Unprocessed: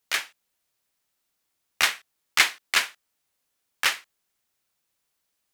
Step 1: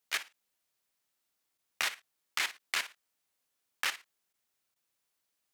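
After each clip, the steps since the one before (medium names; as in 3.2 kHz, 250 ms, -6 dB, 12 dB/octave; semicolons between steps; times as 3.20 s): bass shelf 110 Hz -6 dB; level held to a coarse grid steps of 13 dB; trim -4 dB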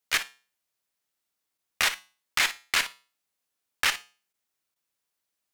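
waveshaping leveller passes 2; feedback comb 65 Hz, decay 0.37 s, harmonics odd, mix 50%; in parallel at -8 dB: one-sided clip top -41 dBFS; on the sum: trim +4.5 dB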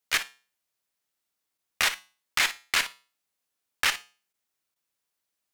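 no audible change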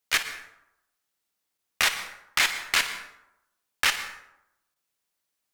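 plate-style reverb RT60 0.83 s, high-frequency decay 0.55×, pre-delay 100 ms, DRR 11 dB; trim +1.5 dB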